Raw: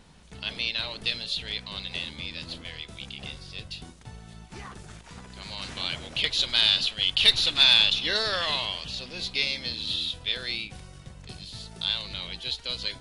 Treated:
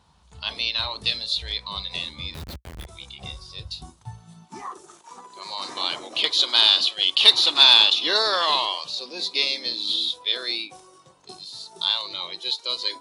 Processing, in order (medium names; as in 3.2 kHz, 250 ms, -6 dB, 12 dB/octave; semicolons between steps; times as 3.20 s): spectral noise reduction 10 dB; graphic EQ 250/500/1000/2000/4000 Hz -4/-3/+11/-6/+4 dB; 2.34–2.87 s: Schmitt trigger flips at -36 dBFS; high-pass sweep 61 Hz -> 330 Hz, 3.85–4.70 s; trim +2.5 dB